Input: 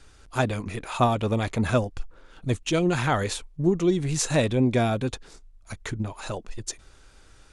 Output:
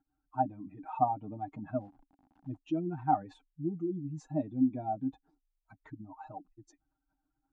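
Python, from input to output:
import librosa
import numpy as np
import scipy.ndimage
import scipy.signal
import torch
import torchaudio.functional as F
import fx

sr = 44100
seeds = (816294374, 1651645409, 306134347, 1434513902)

y = fx.spec_expand(x, sr, power=2.0)
y = y + 0.84 * np.pad(y, (int(6.5 * sr / 1000.0), 0))[:len(y)]
y = fx.sample_gate(y, sr, floor_db=-42.5, at=(1.75, 2.57))
y = fx.double_bandpass(y, sr, hz=470.0, octaves=1.5)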